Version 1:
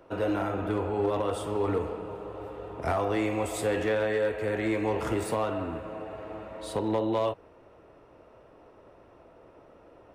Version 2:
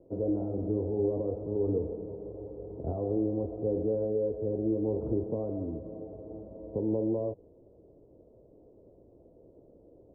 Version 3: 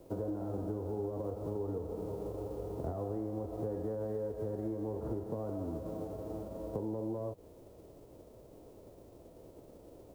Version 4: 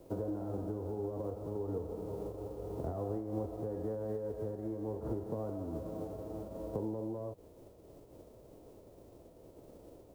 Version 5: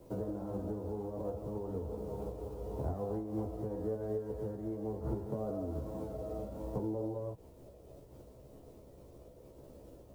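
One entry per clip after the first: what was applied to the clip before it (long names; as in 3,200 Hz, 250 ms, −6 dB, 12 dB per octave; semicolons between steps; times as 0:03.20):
inverse Chebyshev low-pass filter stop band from 2,300 Hz, stop band 70 dB
spectral envelope flattened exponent 0.6; downward compressor 6 to 1, threshold −37 dBFS, peak gain reduction 12.5 dB; level +2.5 dB
amplitude modulation by smooth noise, depth 55%; level +2.5 dB
multi-voice chorus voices 6, 0.33 Hz, delay 15 ms, depth 1.1 ms; level +3.5 dB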